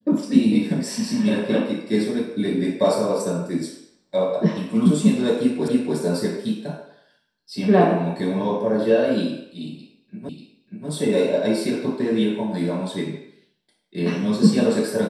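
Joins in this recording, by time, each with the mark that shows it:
0:05.68: the same again, the last 0.29 s
0:10.29: the same again, the last 0.59 s

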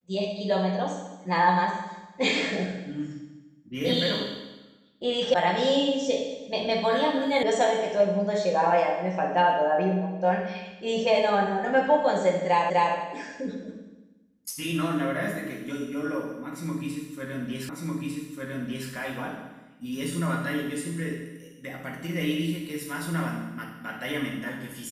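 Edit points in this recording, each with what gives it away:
0:05.34: cut off before it has died away
0:07.43: cut off before it has died away
0:12.70: the same again, the last 0.25 s
0:17.69: the same again, the last 1.2 s

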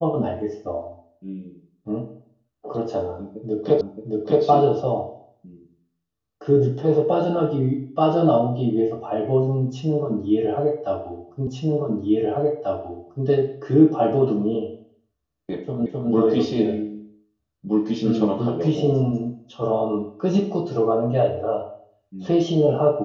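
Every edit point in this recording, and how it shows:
0:03.81: the same again, the last 0.62 s
0:11.47: the same again, the last 1.79 s
0:15.86: the same again, the last 0.26 s

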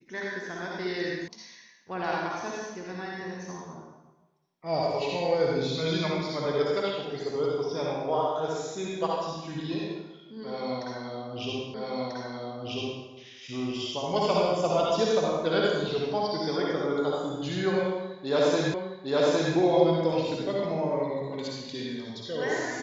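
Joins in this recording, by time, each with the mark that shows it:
0:01.28: cut off before it has died away
0:11.74: the same again, the last 1.29 s
0:18.74: the same again, the last 0.81 s

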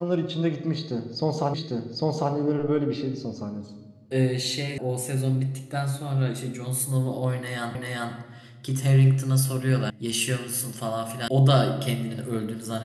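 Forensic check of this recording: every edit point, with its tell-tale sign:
0:01.54: the same again, the last 0.8 s
0:04.78: cut off before it has died away
0:07.75: the same again, the last 0.39 s
0:09.90: cut off before it has died away
0:11.28: cut off before it has died away

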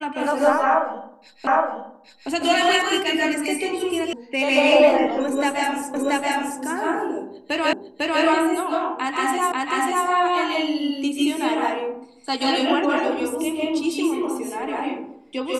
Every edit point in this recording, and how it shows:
0:01.47: the same again, the last 0.82 s
0:04.13: cut off before it has died away
0:05.94: the same again, the last 0.68 s
0:07.73: the same again, the last 0.5 s
0:09.52: the same again, the last 0.54 s

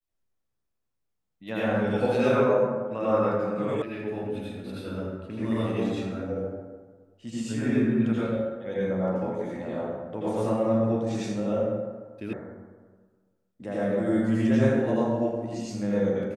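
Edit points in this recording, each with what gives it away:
0:03.82: cut off before it has died away
0:12.33: cut off before it has died away

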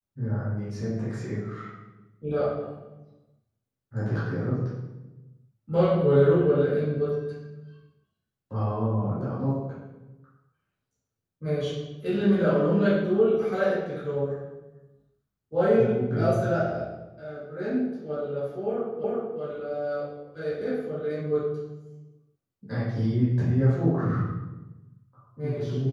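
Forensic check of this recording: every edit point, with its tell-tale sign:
0:19.04: the same again, the last 0.37 s

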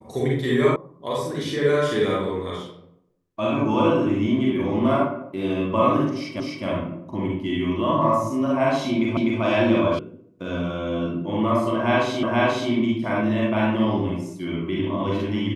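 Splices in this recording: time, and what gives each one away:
0:00.76: cut off before it has died away
0:06.40: the same again, the last 0.26 s
0:09.17: the same again, the last 0.25 s
0:09.99: cut off before it has died away
0:12.23: the same again, the last 0.48 s

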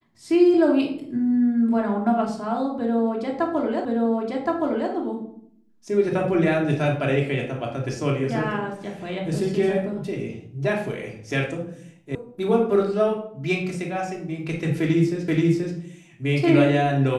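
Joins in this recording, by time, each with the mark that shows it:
0:03.85: the same again, the last 1.07 s
0:12.15: cut off before it has died away
0:15.28: the same again, the last 0.48 s

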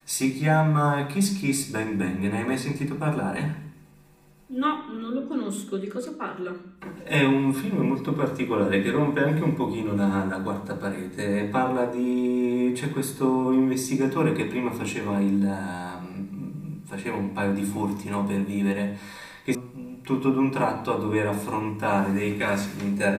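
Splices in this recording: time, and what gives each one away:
0:19.55: cut off before it has died away

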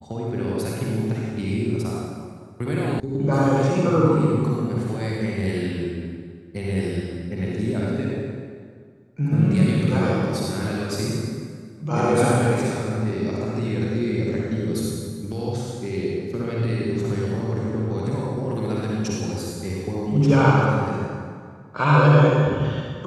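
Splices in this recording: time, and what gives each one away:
0:03.00: cut off before it has died away

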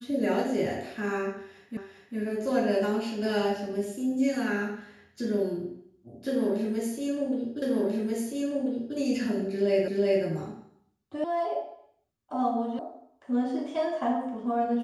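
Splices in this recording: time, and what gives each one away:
0:01.77: the same again, the last 0.4 s
0:07.62: the same again, the last 1.34 s
0:09.88: the same again, the last 0.37 s
0:11.24: cut off before it has died away
0:12.79: cut off before it has died away

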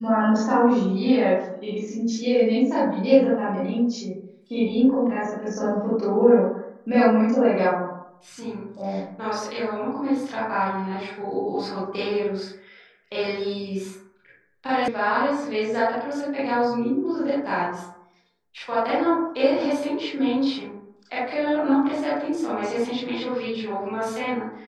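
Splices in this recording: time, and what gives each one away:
0:14.88: cut off before it has died away

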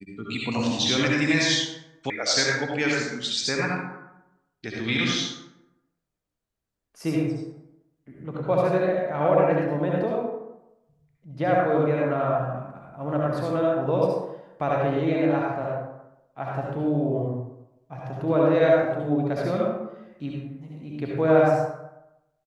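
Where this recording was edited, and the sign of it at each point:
0:02.10: cut off before it has died away

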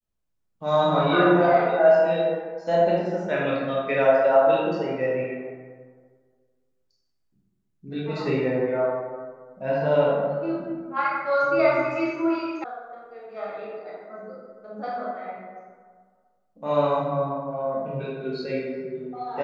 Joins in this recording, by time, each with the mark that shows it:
0:12.64: cut off before it has died away

